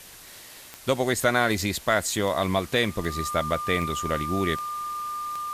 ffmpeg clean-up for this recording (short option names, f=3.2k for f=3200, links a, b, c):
-af "adeclick=t=4,bandreject=f=1.2k:w=30,afftdn=nr=25:nf=-46"